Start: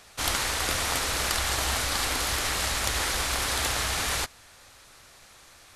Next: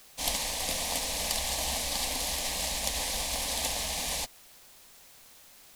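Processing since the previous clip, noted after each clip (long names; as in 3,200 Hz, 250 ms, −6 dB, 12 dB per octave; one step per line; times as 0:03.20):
phaser with its sweep stopped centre 370 Hz, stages 6
bit-depth reduction 8 bits, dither triangular
expander for the loud parts 1.5 to 1, over −41 dBFS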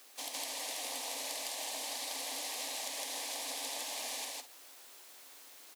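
Chebyshev high-pass filter 260 Hz, order 6
downward compressor 5 to 1, threshold −38 dBFS, peak gain reduction 11.5 dB
on a send: loudspeakers that aren't time-aligned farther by 54 metres 0 dB, 72 metres −12 dB
on the sum: level −2.5 dB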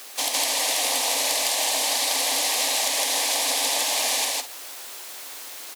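in parallel at −3 dB: sine wavefolder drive 5 dB, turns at −22.5 dBFS
on the sum: low-shelf EQ 180 Hz −11.5 dB
level +7.5 dB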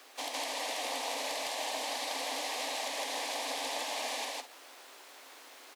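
low-pass filter 2,100 Hz 6 dB per octave
level −7 dB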